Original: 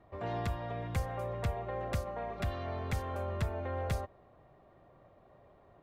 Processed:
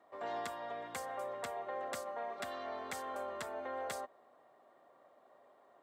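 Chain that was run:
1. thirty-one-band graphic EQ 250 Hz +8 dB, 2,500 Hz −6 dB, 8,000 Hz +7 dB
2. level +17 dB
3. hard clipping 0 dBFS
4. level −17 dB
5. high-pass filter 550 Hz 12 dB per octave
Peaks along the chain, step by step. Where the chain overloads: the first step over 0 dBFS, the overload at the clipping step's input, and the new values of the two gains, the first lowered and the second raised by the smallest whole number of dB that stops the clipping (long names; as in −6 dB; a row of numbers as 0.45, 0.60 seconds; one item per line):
−21.0, −4.0, −4.0, −21.0, −24.0 dBFS
no step passes full scale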